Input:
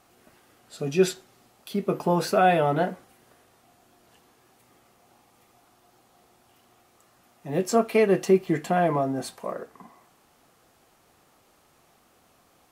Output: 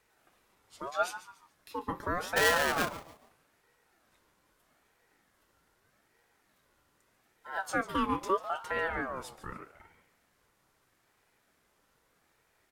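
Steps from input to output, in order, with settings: 2.36–2.89 s: square wave that keeps the level; frequency-shifting echo 143 ms, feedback 32%, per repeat -78 Hz, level -14 dB; ring modulator with a swept carrier 920 Hz, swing 30%, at 0.8 Hz; trim -7.5 dB

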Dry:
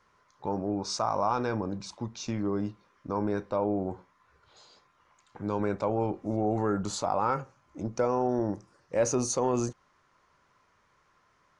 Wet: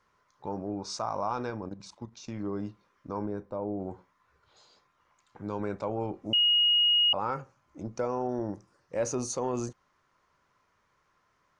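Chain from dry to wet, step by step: 1.50–2.40 s: level held to a coarse grid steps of 11 dB; 3.26–3.80 s: peaking EQ 3.7 kHz -12.5 dB 3 oct; 6.33–7.13 s: bleep 2.88 kHz -16 dBFS; trim -4 dB

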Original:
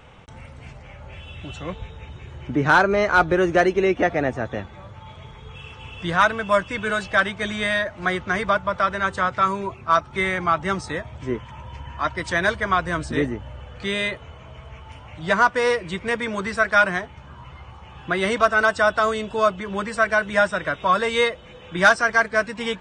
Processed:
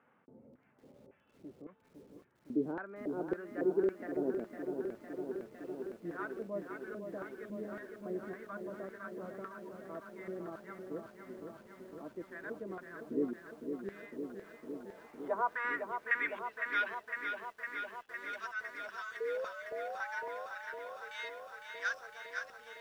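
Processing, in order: reverse; upward compressor, threshold -30 dBFS; reverse; band-pass sweep 240 Hz -> 5.8 kHz, 13.97–17.27 s; painted sound rise, 19.20–20.47 s, 450–1100 Hz -35 dBFS; LFO band-pass square 1.8 Hz 440–1600 Hz; bit-crushed delay 507 ms, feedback 80%, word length 11-bit, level -6.5 dB

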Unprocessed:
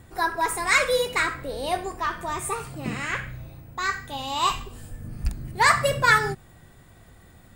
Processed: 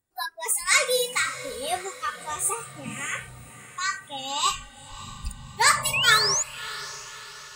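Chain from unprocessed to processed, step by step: spectral noise reduction 29 dB; spectral replace 5.78–6.38 s, 490–1100 Hz before; tone controls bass -6 dB, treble +10 dB; painted sound rise, 5.93–6.43 s, 2.4–7.2 kHz -22 dBFS; on a send: echo that smears into a reverb 606 ms, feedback 50%, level -15.5 dB; on the sum: trim -2 dB

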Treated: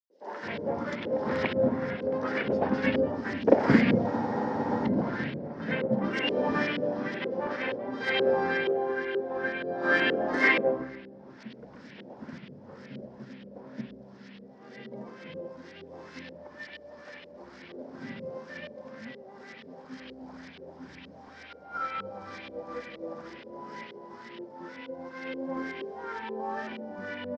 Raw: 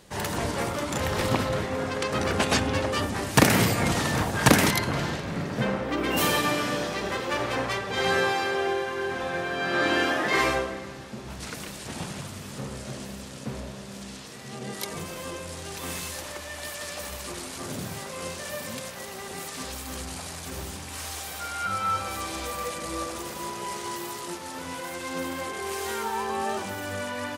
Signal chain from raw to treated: cabinet simulation 170–6500 Hz, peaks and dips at 240 Hz +9 dB, 530 Hz +4 dB, 1.2 kHz -9 dB, 2.6 kHz -4 dB, 5.2 kHz +8 dB; LFO low-pass saw up 2.1 Hz 410–3200 Hz; peaking EQ 730 Hz -6.5 dB 1.1 oct; hum notches 60/120/180/240 Hz; in parallel at -6 dB: saturation -16 dBFS, distortion -13 dB; on the sum: three bands offset in time highs, mids, lows 100/320 ms, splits 320/4200 Hz; spectral freeze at 4.09 s, 0.78 s; upward expansion 1.5:1, over -36 dBFS

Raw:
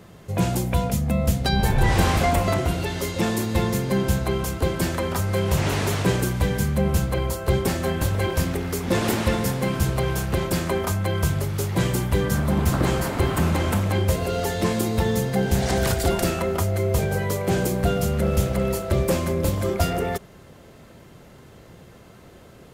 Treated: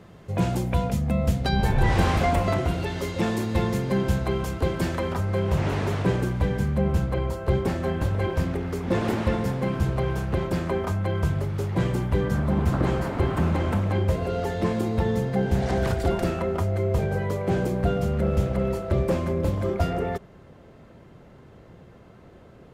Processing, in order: low-pass 3.3 kHz 6 dB/octave, from 5.14 s 1.6 kHz; trim -1.5 dB

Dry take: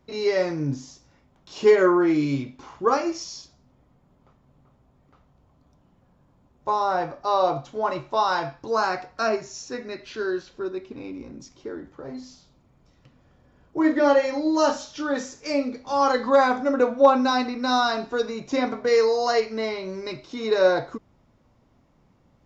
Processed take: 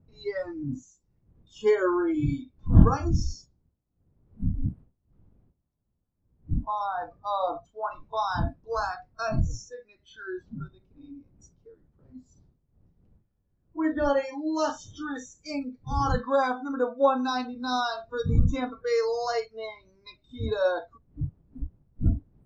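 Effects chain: wind noise 130 Hz -24 dBFS; spectral noise reduction 24 dB; trim -6 dB

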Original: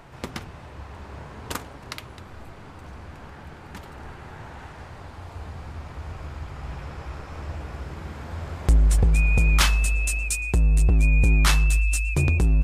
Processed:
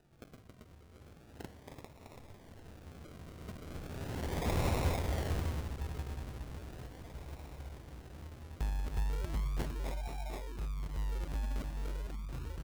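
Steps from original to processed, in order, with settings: Doppler pass-by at 4.59 s, 24 m/s, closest 3.6 m; multi-tap echo 274/731 ms -3.5/-7.5 dB; decimation with a swept rate 40×, swing 60% 0.37 Hz; trim +10 dB

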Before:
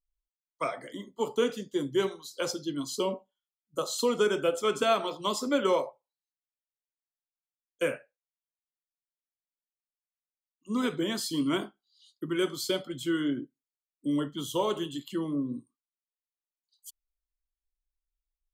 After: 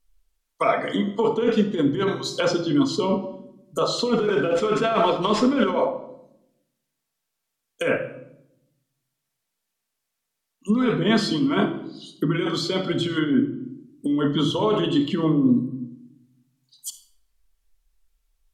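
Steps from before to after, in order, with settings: 4.18–5.70 s: CVSD coder 64 kbps; in parallel at +2 dB: peak limiter -22 dBFS, peak gain reduction 8.5 dB; on the sum: compressor with a negative ratio -26 dBFS, ratio -1; simulated room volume 2200 m³, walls furnished, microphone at 1.6 m; low-pass that closes with the level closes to 2.9 kHz, closed at -23.5 dBFS; trim +5 dB

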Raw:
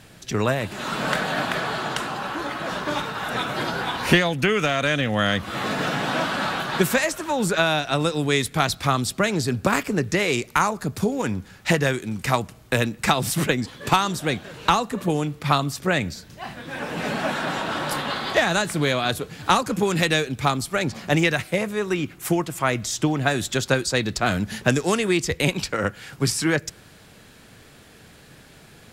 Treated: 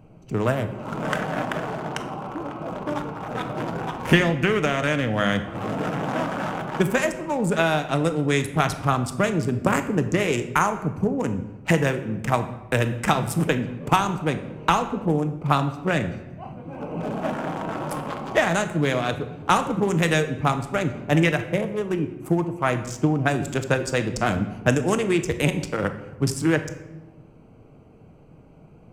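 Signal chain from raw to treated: local Wiener filter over 25 samples; peaking EQ 4.1 kHz -10 dB 0.45 oct; simulated room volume 480 m³, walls mixed, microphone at 0.52 m

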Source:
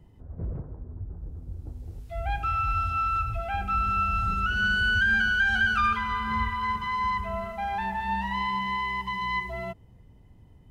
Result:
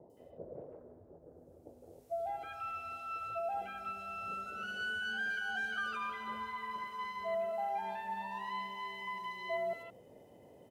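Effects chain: in parallel at -1 dB: compression, threshold -34 dBFS, peak gain reduction 13 dB; on the sum: treble shelf 2.1 kHz -8.5 dB; reverse; upward compressor, threshold -27 dBFS; reverse; resonant high-pass 570 Hz, resonance Q 3.4; peaking EQ 1.2 kHz -13.5 dB 2.8 oct; three bands offset in time lows, highs, mids 100/170 ms, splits 1.1/4.3 kHz

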